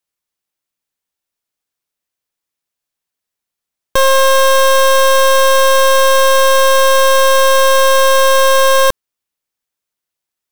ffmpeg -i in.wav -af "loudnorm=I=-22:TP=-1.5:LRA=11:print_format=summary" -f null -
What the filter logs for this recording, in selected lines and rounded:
Input Integrated:    -10.2 LUFS
Input True Peak:      -6.1 dBTP
Input LRA:             4.5 LU
Input Threshold:     -20.3 LUFS